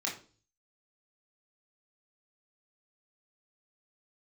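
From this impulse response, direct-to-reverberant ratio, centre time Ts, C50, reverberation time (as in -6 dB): -3.5 dB, 26 ms, 8.5 dB, 0.40 s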